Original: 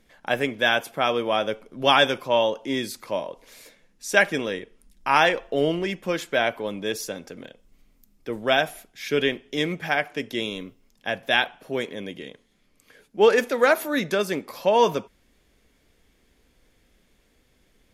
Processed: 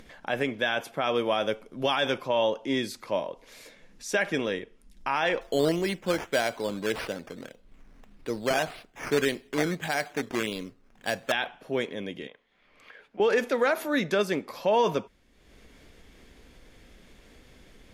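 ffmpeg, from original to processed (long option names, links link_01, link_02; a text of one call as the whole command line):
ffmpeg -i in.wav -filter_complex "[0:a]asettb=1/sr,asplit=3[link_01][link_02][link_03];[link_01]atrim=end=1.154[link_04];[link_02]atrim=start=1.15:end=2.01,asetpts=PTS-STARTPTS,afade=type=in:duration=0.004:curve=qsin,afade=type=out:start_time=0.856:duration=0.004:curve=qsin,highshelf=frequency=6600:gain=8.5[link_05];[link_03]atrim=start=2.006[link_06];[link_04][link_05]acrossfade=duration=0.004:curve1=hsin:curve2=qsin[link_07];[link_07][link_06]acrossfade=duration=0.004:curve1=qsin:curve2=hsin,asettb=1/sr,asplit=3[link_08][link_09][link_10];[link_08]atrim=end=5.414[link_11];[link_09]atrim=start=5.41:end=11.32,asetpts=PTS-STARTPTS,afade=type=in:duration=0.004:curve=qsin,afade=type=out:start_time=5.906:duration=0.004:curve=qsin,acrusher=samples=9:mix=1:aa=0.000001:lfo=1:lforange=5.4:lforate=1.7[link_12];[link_10]atrim=start=11.316[link_13];[link_11][link_12]acrossfade=duration=0.004:curve1=hsin:curve2=qsin[link_14];[link_14][link_13]acrossfade=duration=0.004:curve1=qsin:curve2=hsin,asettb=1/sr,asplit=3[link_15][link_16][link_17];[link_15]atrim=end=12.274[link_18];[link_16]atrim=start=12.27:end=13.2,asetpts=PTS-STARTPTS,afade=type=in:duration=0.004:curve=qsin,afade=type=out:start_time=0.926:duration=0.004:curve=qsin,acrossover=split=540 3400:gain=0.178 1 0.112[link_19][link_20][link_21];[link_19][link_20][link_21]amix=inputs=3:normalize=0[link_22];[link_17]atrim=start=13.196[link_23];[link_18][link_22]acrossfade=duration=0.004:curve1=hsin:curve2=qsin[link_24];[link_24][link_23]acrossfade=duration=0.004:curve1=qsin:curve2=hsin,acompressor=mode=upward:threshold=-40dB:ratio=2.5,alimiter=limit=-13.5dB:level=0:latency=1:release=47,highshelf=frequency=9400:gain=-10.5,volume=-1dB" out.wav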